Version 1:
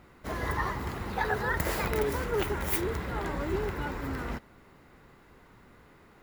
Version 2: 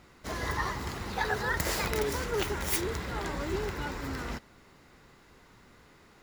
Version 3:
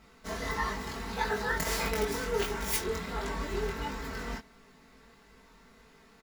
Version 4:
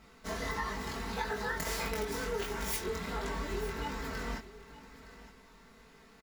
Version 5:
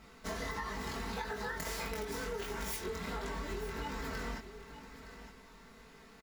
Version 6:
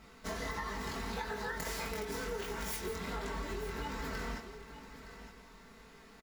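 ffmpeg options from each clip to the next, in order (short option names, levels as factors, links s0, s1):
-af "equalizer=f=5700:w=0.68:g=10,volume=0.794"
-af "aecho=1:1:4.5:0.87,flanger=delay=19.5:depth=3.4:speed=1.5"
-af "acompressor=threshold=0.0251:ratio=4,aecho=1:1:916:0.158"
-af "acompressor=threshold=0.0141:ratio=6,volume=1.19"
-af "aecho=1:1:167:0.266"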